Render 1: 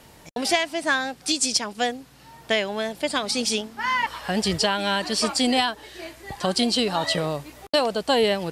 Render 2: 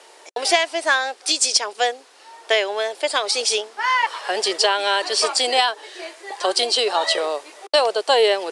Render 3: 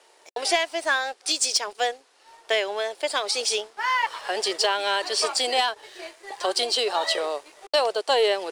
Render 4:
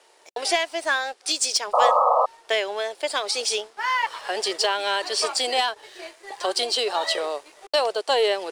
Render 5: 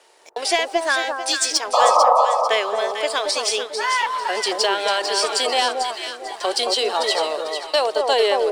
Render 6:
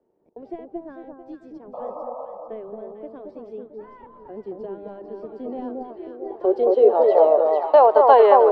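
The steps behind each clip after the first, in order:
Chebyshev band-pass 380–9900 Hz, order 4; gain +5 dB
sample leveller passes 1; gain -8 dB
painted sound noise, 1.73–2.26, 470–1300 Hz -18 dBFS
echo with dull and thin repeats by turns 0.223 s, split 1200 Hz, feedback 55%, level -2.5 dB; gain +2.5 dB
low-pass sweep 200 Hz -> 1000 Hz, 5.3–8.05; gain +3 dB

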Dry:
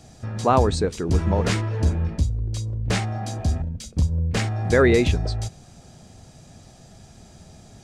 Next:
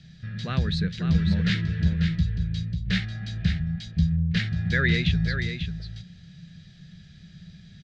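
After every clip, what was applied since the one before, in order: EQ curve 120 Hz 0 dB, 170 Hz +13 dB, 250 Hz -10 dB, 560 Hz -14 dB, 940 Hz -23 dB, 1700 Hz +7 dB, 2500 Hz +2 dB, 3800 Hz +8 dB, 11000 Hz -30 dB; echo 0.543 s -7.5 dB; gain -4.5 dB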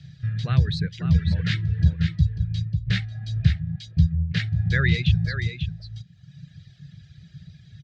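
HPF 73 Hz; reverb removal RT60 1.2 s; resonant low shelf 160 Hz +6.5 dB, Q 3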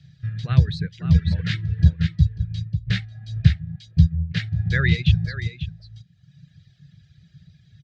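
upward expander 1.5:1, over -32 dBFS; gain +4.5 dB

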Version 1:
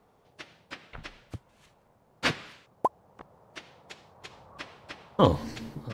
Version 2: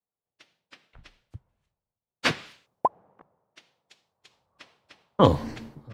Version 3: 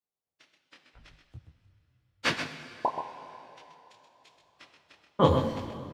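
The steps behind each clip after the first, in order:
three-band expander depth 100%; gain -6 dB
echo 0.129 s -8 dB; plate-style reverb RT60 3.4 s, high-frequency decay 0.9×, DRR 9.5 dB; detuned doubles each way 31 cents

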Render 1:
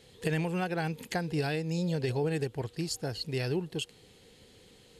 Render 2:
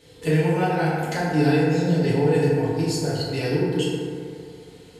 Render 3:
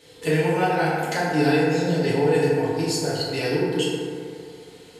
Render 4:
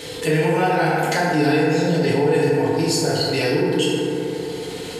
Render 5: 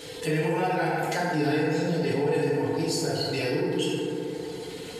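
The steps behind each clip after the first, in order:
FDN reverb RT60 2.4 s, low-frequency decay 0.95×, high-frequency decay 0.35×, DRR -8.5 dB
low shelf 210 Hz -11 dB; gain +3 dB
fast leveller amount 50%; gain +1 dB
bin magnitudes rounded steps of 15 dB; gain -7 dB

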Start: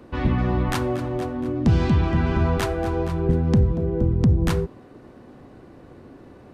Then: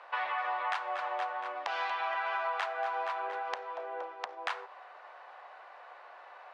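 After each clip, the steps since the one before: steep high-pass 700 Hz 36 dB/oct; compressor 6:1, threshold -36 dBFS, peak gain reduction 12 dB; LPF 2800 Hz 12 dB/oct; gain +6 dB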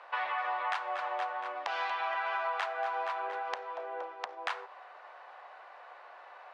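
nothing audible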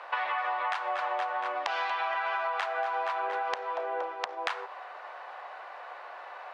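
compressor, threshold -35 dBFS, peak gain reduction 7 dB; gain +7.5 dB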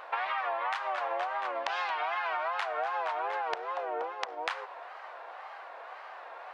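wow and flutter 140 cents; gain -1.5 dB

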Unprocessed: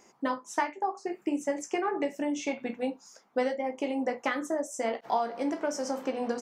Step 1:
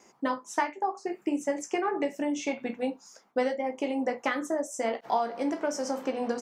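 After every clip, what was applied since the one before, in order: gate with hold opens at -57 dBFS; gain +1 dB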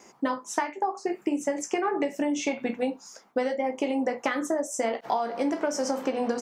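compressor, threshold -28 dBFS, peak gain reduction 7.5 dB; gain +5.5 dB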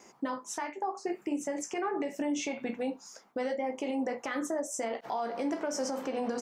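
limiter -21 dBFS, peak gain reduction 9 dB; gain -3 dB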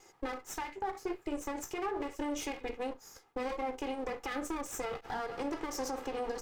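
minimum comb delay 2.4 ms; gain -2.5 dB

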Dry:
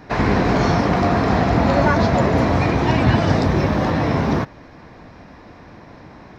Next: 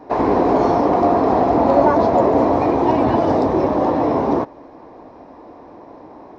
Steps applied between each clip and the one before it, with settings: band shelf 530 Hz +15 dB 2.4 oct; gain -10 dB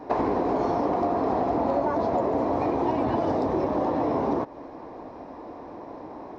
compressor 6:1, threshold -22 dBFS, peak gain reduction 13 dB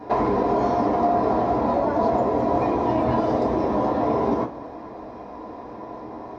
reverb, pre-delay 3 ms, DRR -1 dB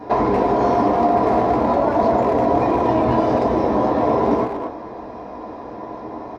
speakerphone echo 0.23 s, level -6 dB; gain +3.5 dB

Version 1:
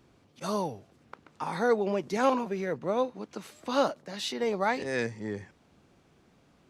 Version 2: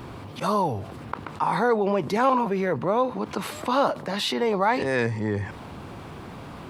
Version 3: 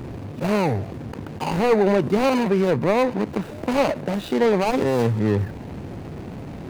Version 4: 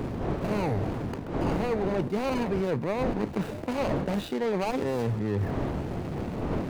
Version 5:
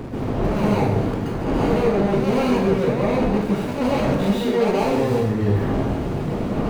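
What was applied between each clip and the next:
fifteen-band EQ 100 Hz +6 dB, 1000 Hz +7 dB, 6300 Hz -8 dB; fast leveller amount 50%
median filter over 41 samples; gain +7 dB
wind noise 440 Hz -25 dBFS; reverse; compressor 6:1, threshold -25 dBFS, peak gain reduction 14.5 dB; reverse
plate-style reverb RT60 0.79 s, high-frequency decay 0.95×, pre-delay 0.115 s, DRR -7 dB

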